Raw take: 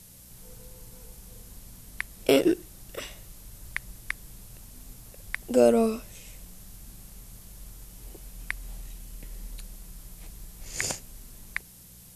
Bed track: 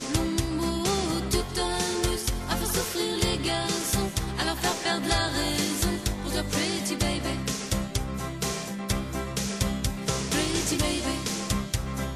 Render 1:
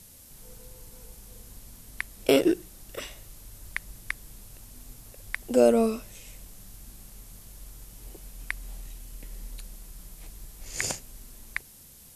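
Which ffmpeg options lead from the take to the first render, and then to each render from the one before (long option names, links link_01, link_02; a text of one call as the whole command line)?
ffmpeg -i in.wav -af "bandreject=frequency=60:width_type=h:width=4,bandreject=frequency=120:width_type=h:width=4,bandreject=frequency=180:width_type=h:width=4" out.wav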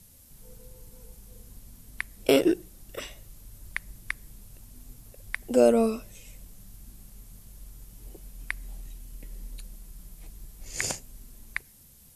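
ffmpeg -i in.wav -af "afftdn=noise_reduction=6:noise_floor=-51" out.wav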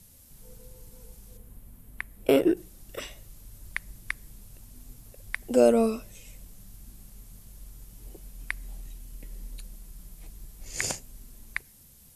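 ffmpeg -i in.wav -filter_complex "[0:a]asettb=1/sr,asplit=3[link_01][link_02][link_03];[link_01]atrim=end=1.374[link_04];[link_02]atrim=start=1.37:end=2.57,asetpts=PTS-STARTPTS,afade=type=in:duration=0.004:curve=qsin,afade=type=out:start_time=1.196:duration=0.004:curve=qsin,equalizer=frequency=5500:width_type=o:width=1.6:gain=-12[link_05];[link_03]atrim=start=2.566[link_06];[link_04][link_05]acrossfade=duration=0.004:curve1=hsin:curve2=qsin[link_07];[link_07][link_06]acrossfade=duration=0.004:curve1=qsin:curve2=hsin" out.wav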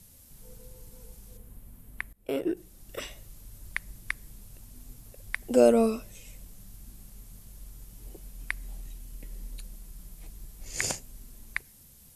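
ffmpeg -i in.wav -filter_complex "[0:a]asplit=2[link_01][link_02];[link_01]atrim=end=2.13,asetpts=PTS-STARTPTS,afade=type=out:start_time=2.126:duration=0.004:curve=hsin:silence=0.0944061[link_03];[link_02]atrim=start=2.13,asetpts=PTS-STARTPTS,afade=type=in:duration=0.87:silence=0.0944061[link_04];[link_03][link_04]concat=n=2:v=0:a=1" out.wav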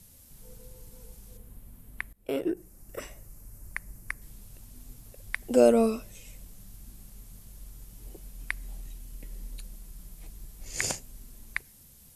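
ffmpeg -i in.wav -filter_complex "[0:a]asettb=1/sr,asplit=3[link_01][link_02][link_03];[link_01]atrim=end=2.504[link_04];[link_02]atrim=start=2.5:end=4.22,asetpts=PTS-STARTPTS,afade=type=in:duration=0.004:curve=qsin,afade=type=out:start_time=1.716:duration=0.004:curve=qsin,equalizer=frequency=3500:width_type=o:width=0.8:gain=-14[link_05];[link_03]atrim=start=4.216[link_06];[link_04][link_05]acrossfade=duration=0.004:curve1=hsin:curve2=qsin[link_07];[link_07][link_06]acrossfade=duration=0.004:curve1=qsin:curve2=hsin" out.wav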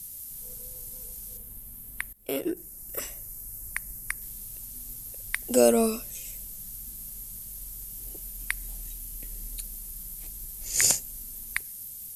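ffmpeg -i in.wav -af "aemphasis=mode=production:type=75fm" out.wav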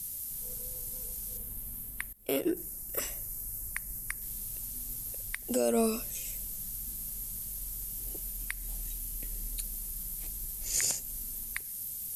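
ffmpeg -i in.wav -af "alimiter=limit=-17.5dB:level=0:latency=1:release=206,areverse,acompressor=mode=upward:threshold=-34dB:ratio=2.5,areverse" out.wav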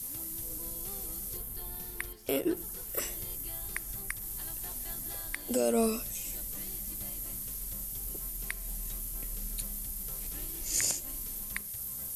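ffmpeg -i in.wav -i bed.wav -filter_complex "[1:a]volume=-24dB[link_01];[0:a][link_01]amix=inputs=2:normalize=0" out.wav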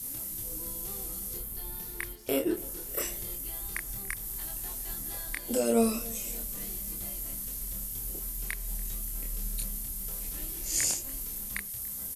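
ffmpeg -i in.wav -filter_complex "[0:a]asplit=2[link_01][link_02];[link_02]adelay=26,volume=-3.5dB[link_03];[link_01][link_03]amix=inputs=2:normalize=0,asplit=2[link_04][link_05];[link_05]adelay=287,lowpass=frequency=2000:poles=1,volume=-21.5dB,asplit=2[link_06][link_07];[link_07]adelay=287,lowpass=frequency=2000:poles=1,volume=0.54,asplit=2[link_08][link_09];[link_09]adelay=287,lowpass=frequency=2000:poles=1,volume=0.54,asplit=2[link_10][link_11];[link_11]adelay=287,lowpass=frequency=2000:poles=1,volume=0.54[link_12];[link_04][link_06][link_08][link_10][link_12]amix=inputs=5:normalize=0" out.wav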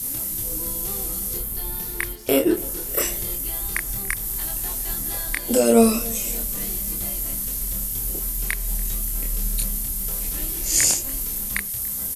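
ffmpeg -i in.wav -af "volume=10dB" out.wav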